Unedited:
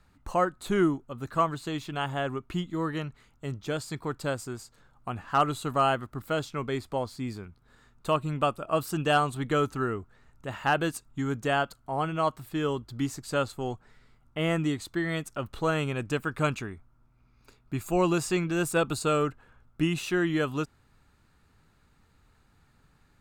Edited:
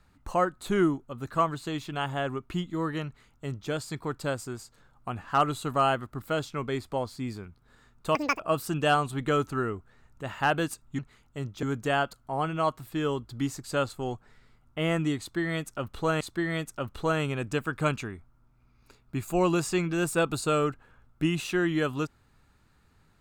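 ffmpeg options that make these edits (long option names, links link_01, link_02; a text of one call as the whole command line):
ffmpeg -i in.wav -filter_complex "[0:a]asplit=6[link_01][link_02][link_03][link_04][link_05][link_06];[link_01]atrim=end=8.154[link_07];[link_02]atrim=start=8.15:end=8.63,asetpts=PTS-STARTPTS,asetrate=85995,aresample=44100,atrim=end_sample=10855,asetpts=PTS-STARTPTS[link_08];[link_03]atrim=start=8.626:end=11.222[link_09];[link_04]atrim=start=3.058:end=3.702[link_10];[link_05]atrim=start=11.218:end=15.802[link_11];[link_06]atrim=start=14.788[link_12];[link_07][link_08]acrossfade=duration=0.004:curve1=hsin:curve2=hsin[link_13];[link_13][link_09]acrossfade=duration=0.004:curve1=hsin:curve2=hsin[link_14];[link_14][link_10]acrossfade=duration=0.004:curve1=hsin:curve2=hsin[link_15];[link_15][link_11]acrossfade=duration=0.004:curve1=hsin:curve2=hsin[link_16];[link_16][link_12]acrossfade=duration=0.004:curve1=hsin:curve2=hsin" out.wav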